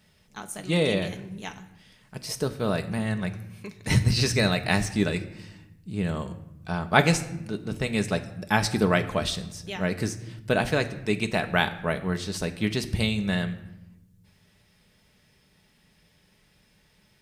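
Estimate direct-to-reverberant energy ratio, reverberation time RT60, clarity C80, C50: 6.0 dB, 0.85 s, 16.0 dB, 14.0 dB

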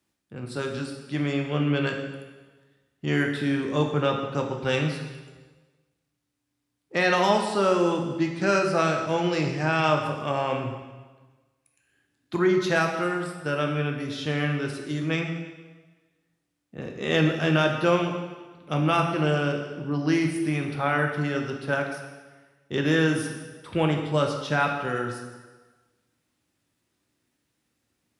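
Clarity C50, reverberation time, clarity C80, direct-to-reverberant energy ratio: 5.5 dB, 1.3 s, 7.0 dB, 2.0 dB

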